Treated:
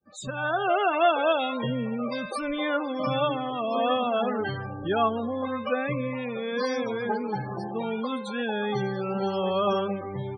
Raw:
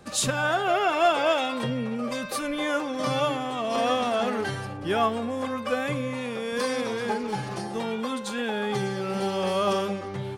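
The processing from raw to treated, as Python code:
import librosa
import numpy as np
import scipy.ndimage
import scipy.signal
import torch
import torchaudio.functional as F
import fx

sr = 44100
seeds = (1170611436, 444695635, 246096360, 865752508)

y = fx.fade_in_head(x, sr, length_s=0.64)
y = fx.spec_topn(y, sr, count=32)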